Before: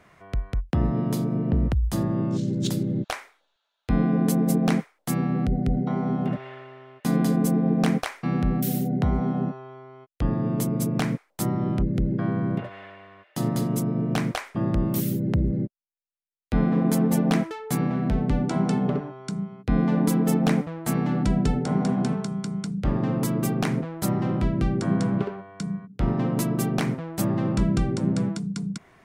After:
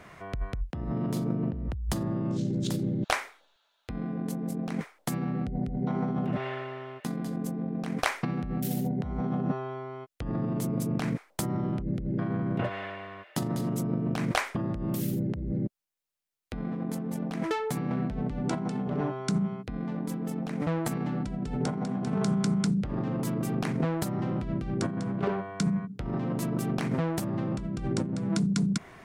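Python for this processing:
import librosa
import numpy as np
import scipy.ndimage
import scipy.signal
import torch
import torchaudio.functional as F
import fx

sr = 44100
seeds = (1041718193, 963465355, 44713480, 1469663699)

y = fx.over_compress(x, sr, threshold_db=-30.0, ratio=-1.0)
y = fx.doppler_dist(y, sr, depth_ms=0.12)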